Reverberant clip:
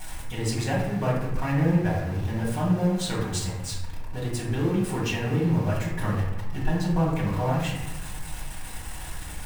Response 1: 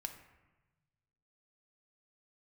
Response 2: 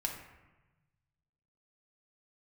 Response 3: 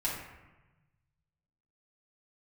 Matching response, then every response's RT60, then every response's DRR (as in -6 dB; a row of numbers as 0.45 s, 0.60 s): 3; 1.1 s, 1.1 s, 1.1 s; 4.5 dB, -0.5 dB, -7.5 dB